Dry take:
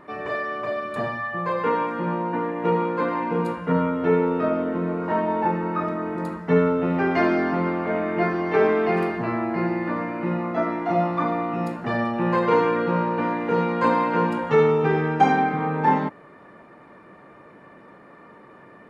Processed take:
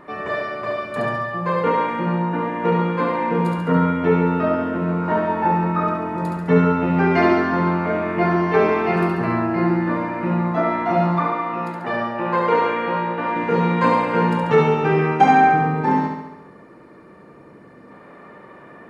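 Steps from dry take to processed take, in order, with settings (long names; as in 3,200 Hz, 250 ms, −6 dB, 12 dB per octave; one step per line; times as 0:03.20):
0:11.19–0:13.36: bass and treble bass −14 dB, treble −7 dB
0:15.53–0:17.91: gain on a spectral selection 530–3,900 Hz −6 dB
flutter between parallel walls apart 11.9 metres, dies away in 0.92 s
level +3 dB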